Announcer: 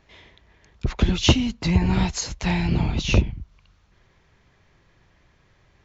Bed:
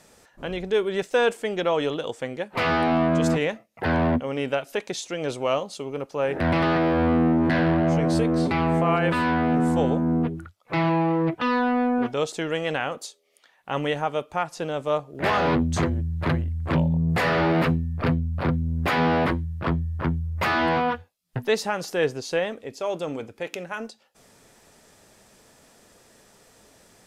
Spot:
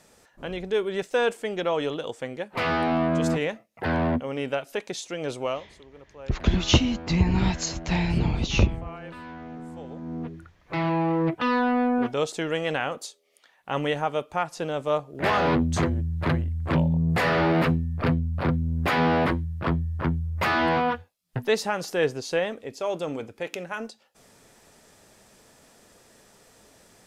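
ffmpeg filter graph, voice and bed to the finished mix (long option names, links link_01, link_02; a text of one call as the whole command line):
ffmpeg -i stem1.wav -i stem2.wav -filter_complex "[0:a]adelay=5450,volume=-2dB[link_01];[1:a]volume=15dB,afade=type=out:start_time=5.44:duration=0.21:silence=0.16788,afade=type=in:start_time=9.88:duration=1.42:silence=0.133352[link_02];[link_01][link_02]amix=inputs=2:normalize=0" out.wav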